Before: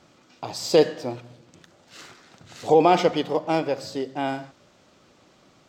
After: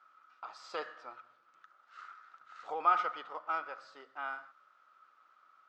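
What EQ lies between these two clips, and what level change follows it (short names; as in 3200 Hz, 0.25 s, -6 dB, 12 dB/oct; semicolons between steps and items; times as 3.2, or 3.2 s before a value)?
band-pass 1300 Hz, Q 12; air absorption 54 m; tilt +2.5 dB/oct; +6.5 dB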